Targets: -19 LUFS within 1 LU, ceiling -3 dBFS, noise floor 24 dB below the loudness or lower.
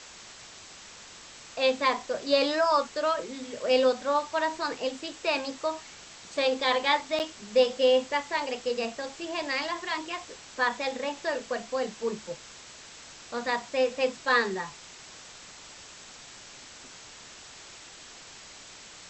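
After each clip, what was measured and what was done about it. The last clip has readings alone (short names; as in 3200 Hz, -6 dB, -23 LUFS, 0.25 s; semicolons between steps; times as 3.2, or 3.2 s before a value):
dropouts 1; longest dropout 8.5 ms; noise floor -48 dBFS; noise floor target -52 dBFS; loudness -28.0 LUFS; peak -10.5 dBFS; loudness target -19.0 LUFS
-> interpolate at 7.19, 8.5 ms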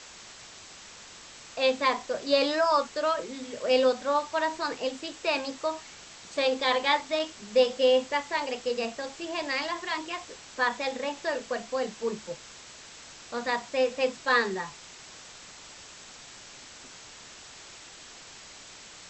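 dropouts 0; noise floor -48 dBFS; noise floor target -52 dBFS
-> denoiser 6 dB, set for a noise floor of -48 dBFS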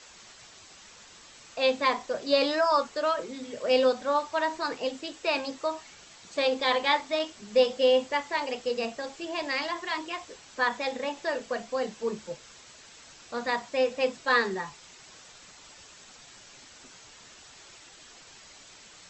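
noise floor -52 dBFS; loudness -28.0 LUFS; peak -10.5 dBFS; loudness target -19.0 LUFS
-> gain +9 dB; limiter -3 dBFS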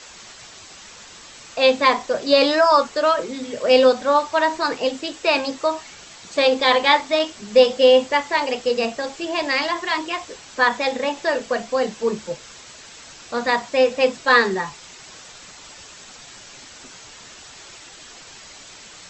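loudness -19.0 LUFS; peak -3.0 dBFS; noise floor -43 dBFS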